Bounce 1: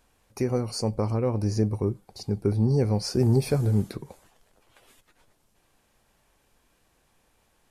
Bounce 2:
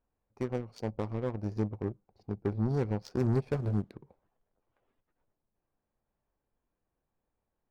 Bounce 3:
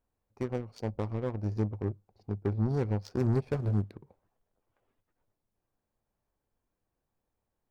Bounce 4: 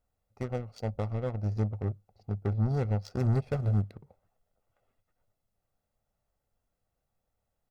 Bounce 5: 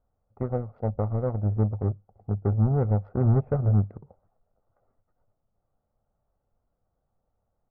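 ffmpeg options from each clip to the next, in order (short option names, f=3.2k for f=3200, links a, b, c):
-af "aeval=exprs='0.282*(cos(1*acos(clip(val(0)/0.282,-1,1)))-cos(1*PI/2))+0.0251*(cos(7*acos(clip(val(0)/0.282,-1,1)))-cos(7*PI/2))':c=same,adynamicsmooth=sensitivity=7:basefreq=1.4k,volume=-7dB"
-af "equalizer=f=100:w=7:g=6"
-af "aecho=1:1:1.5:0.5"
-af "lowpass=f=1.3k:w=0.5412,lowpass=f=1.3k:w=1.3066,volume=5.5dB"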